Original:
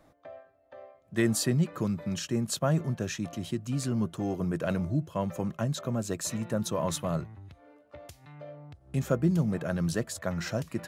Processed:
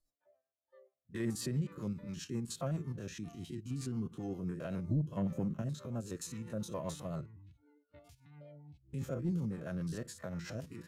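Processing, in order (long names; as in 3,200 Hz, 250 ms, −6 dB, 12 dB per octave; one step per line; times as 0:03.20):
spectrum averaged block by block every 50 ms
0:04.89–0:05.62: parametric band 180 Hz +8.5 dB 2.2 octaves
on a send at −16.5 dB: convolution reverb RT60 0.35 s, pre-delay 6 ms
on the sum: soft clipping −16 dBFS, distortion −20 dB
noise reduction from a noise print of the clip's start 25 dB
rotating-speaker cabinet horn 7.5 Hz
level −6.5 dB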